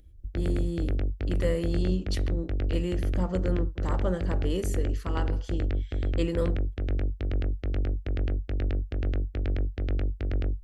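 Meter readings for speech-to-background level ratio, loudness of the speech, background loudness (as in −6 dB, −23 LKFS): −2.5 dB, −33.5 LKFS, −31.0 LKFS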